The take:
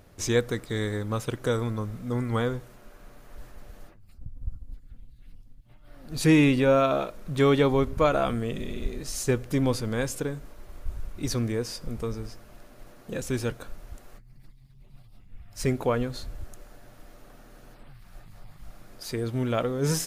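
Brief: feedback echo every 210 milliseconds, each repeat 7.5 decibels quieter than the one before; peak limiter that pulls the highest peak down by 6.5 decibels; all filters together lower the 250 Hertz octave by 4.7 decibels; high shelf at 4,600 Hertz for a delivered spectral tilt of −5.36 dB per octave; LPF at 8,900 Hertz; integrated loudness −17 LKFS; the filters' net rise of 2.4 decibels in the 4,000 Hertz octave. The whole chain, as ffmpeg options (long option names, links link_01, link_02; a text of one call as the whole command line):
ffmpeg -i in.wav -af "lowpass=8900,equalizer=frequency=250:width_type=o:gain=-6,equalizer=frequency=4000:width_type=o:gain=7,highshelf=frequency=4600:gain=-7.5,alimiter=limit=-17dB:level=0:latency=1,aecho=1:1:210|420|630|840|1050:0.422|0.177|0.0744|0.0312|0.0131,volume=13dB" out.wav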